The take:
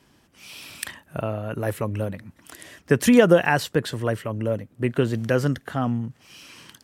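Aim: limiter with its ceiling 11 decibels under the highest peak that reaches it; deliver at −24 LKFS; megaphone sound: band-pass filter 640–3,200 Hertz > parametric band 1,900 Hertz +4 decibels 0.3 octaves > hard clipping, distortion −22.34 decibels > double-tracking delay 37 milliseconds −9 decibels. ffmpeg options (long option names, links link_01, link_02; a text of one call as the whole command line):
ffmpeg -i in.wav -filter_complex "[0:a]alimiter=limit=-14.5dB:level=0:latency=1,highpass=640,lowpass=3200,equalizer=frequency=1900:width_type=o:width=0.3:gain=4,asoftclip=type=hard:threshold=-20.5dB,asplit=2[link_01][link_02];[link_02]adelay=37,volume=-9dB[link_03];[link_01][link_03]amix=inputs=2:normalize=0,volume=10dB" out.wav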